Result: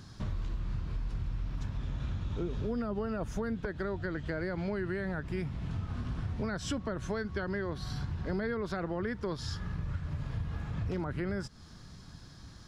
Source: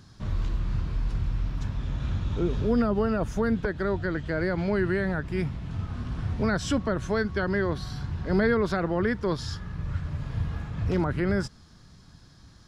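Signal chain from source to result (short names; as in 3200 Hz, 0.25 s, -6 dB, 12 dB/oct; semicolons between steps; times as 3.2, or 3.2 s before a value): compressor 4:1, threshold -35 dBFS, peak gain reduction 13.5 dB; gain +2 dB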